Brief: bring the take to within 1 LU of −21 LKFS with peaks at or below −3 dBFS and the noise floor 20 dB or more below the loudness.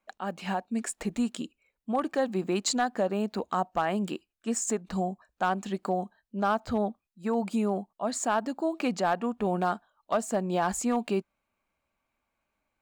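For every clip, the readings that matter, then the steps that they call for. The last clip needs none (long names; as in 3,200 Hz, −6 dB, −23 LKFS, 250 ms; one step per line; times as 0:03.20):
share of clipped samples 0.3%; peaks flattened at −18.0 dBFS; integrated loudness −30.0 LKFS; sample peak −18.0 dBFS; target loudness −21.0 LKFS
→ clipped peaks rebuilt −18 dBFS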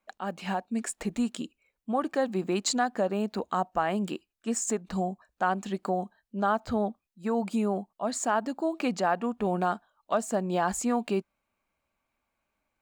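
share of clipped samples 0.0%; integrated loudness −30.0 LKFS; sample peak −13.5 dBFS; target loudness −21.0 LKFS
→ level +9 dB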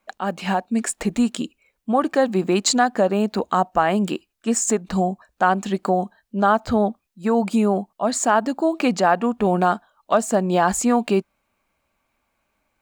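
integrated loudness −21.0 LKFS; sample peak −4.5 dBFS; background noise floor −74 dBFS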